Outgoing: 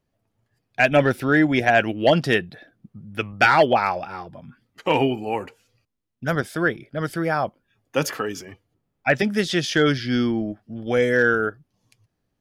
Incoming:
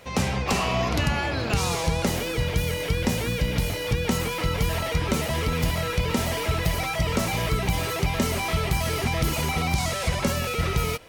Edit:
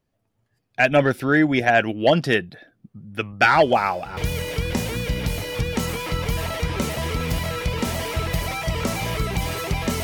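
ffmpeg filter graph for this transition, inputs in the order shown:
ffmpeg -i cue0.wav -i cue1.wav -filter_complex "[1:a]asplit=2[link_01][link_02];[0:a]apad=whole_dur=10.03,atrim=end=10.03,atrim=end=4.172[link_03];[link_02]atrim=start=2.488:end=8.35[link_04];[link_01]atrim=start=1.77:end=2.49,asetpts=PTS-STARTPTS,volume=-17.5dB,afade=type=in:duration=0.004:curve=hsin,afade=type=out:start_time=0.716:duration=0.004:curve=hsin,adelay=152145S[link_05];[link_03][link_04]acrossfade=duration=0.004:curve1=hsin:curve2=hsin[link_06];[link_06][link_05]amix=inputs=2:normalize=0" out.wav

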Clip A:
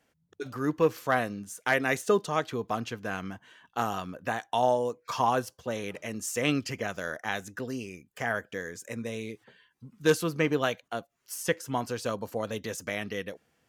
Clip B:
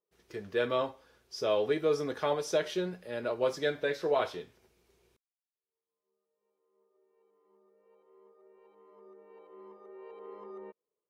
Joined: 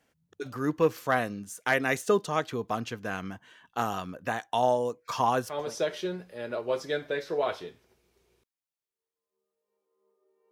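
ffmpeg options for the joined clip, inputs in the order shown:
ffmpeg -i cue0.wav -i cue1.wav -filter_complex "[0:a]apad=whole_dur=10.51,atrim=end=10.51,atrim=end=5.76,asetpts=PTS-STARTPTS[link_01];[1:a]atrim=start=2.15:end=7.24,asetpts=PTS-STARTPTS[link_02];[link_01][link_02]acrossfade=duration=0.34:curve1=qsin:curve2=qsin" out.wav

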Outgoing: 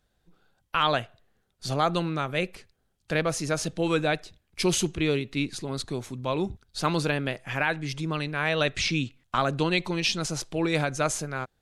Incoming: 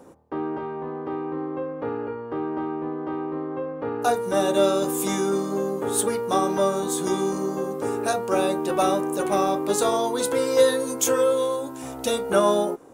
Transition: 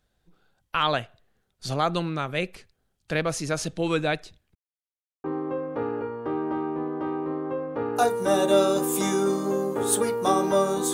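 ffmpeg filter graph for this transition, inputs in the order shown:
ffmpeg -i cue0.wav -i cue1.wav -filter_complex "[0:a]apad=whole_dur=10.93,atrim=end=10.93,asplit=2[link_01][link_02];[link_01]atrim=end=4.55,asetpts=PTS-STARTPTS,afade=type=out:start_time=4.546:duration=0.004:curve=hsin[link_03];[link_02]atrim=start=4.55:end=5.24,asetpts=PTS-STARTPTS,volume=0[link_04];[1:a]atrim=start=1.3:end=6.99,asetpts=PTS-STARTPTS,afade=type=in:duration=0.004:curve=hsin[link_05];[link_03][link_04][link_05]concat=n=3:v=0:a=1" out.wav

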